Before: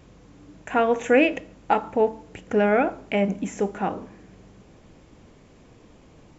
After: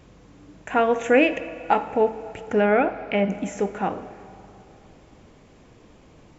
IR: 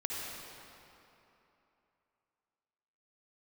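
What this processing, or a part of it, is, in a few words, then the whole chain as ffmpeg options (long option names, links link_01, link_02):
filtered reverb send: -filter_complex "[0:a]asettb=1/sr,asplit=3[link_01][link_02][link_03];[link_01]atrim=end=2.604[link_04];[link_02]atrim=start=2.6:end=3.3,asetpts=PTS-STARTPTS,afade=type=in:duration=0.004:curve=qsin,afade=type=out:start_time=0.696:duration=0.004:curve=qsin,lowpass=frequency=5000:width=0.5412,lowpass=frequency=5000:width=1.3066[link_05];[link_03]atrim=start=3.296[link_06];[link_04][link_05]acrossfade=duration=0.004:curve1=hsin:curve2=qsin[link_07];[link_07][link_06]acrossfade=duration=0.004:curve1=qsin:curve2=hsin,asplit=2[link_08][link_09];[link_09]highpass=340,lowpass=5700[link_10];[1:a]atrim=start_sample=2205[link_11];[link_10][link_11]afir=irnorm=-1:irlink=0,volume=-15dB[link_12];[link_08][link_12]amix=inputs=2:normalize=0"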